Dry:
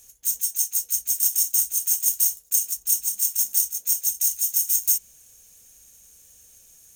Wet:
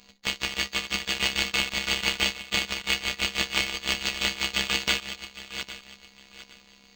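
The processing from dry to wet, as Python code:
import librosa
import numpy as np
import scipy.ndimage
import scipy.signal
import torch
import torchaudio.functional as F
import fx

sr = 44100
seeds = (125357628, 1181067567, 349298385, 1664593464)

y = fx.reverse_delay_fb(x, sr, ms=404, feedback_pct=50, wet_db=-10)
y = fx.robotise(y, sr, hz=268.0)
y = np.interp(np.arange(len(y)), np.arange(len(y))[::4], y[::4])
y = F.gain(torch.from_numpy(y), -1.0).numpy()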